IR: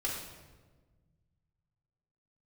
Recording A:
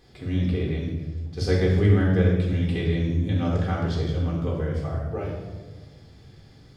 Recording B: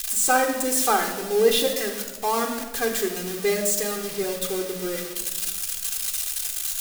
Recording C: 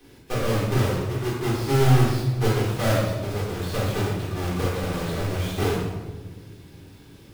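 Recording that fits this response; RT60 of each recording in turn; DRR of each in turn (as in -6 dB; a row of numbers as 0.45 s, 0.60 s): A; 1.4 s, 1.4 s, 1.4 s; -3.5 dB, 4.0 dB, -7.5 dB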